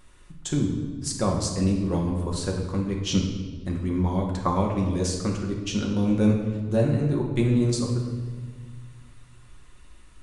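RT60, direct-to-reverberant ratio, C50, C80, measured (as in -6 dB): 1.5 s, -1.0 dB, 4.0 dB, 6.5 dB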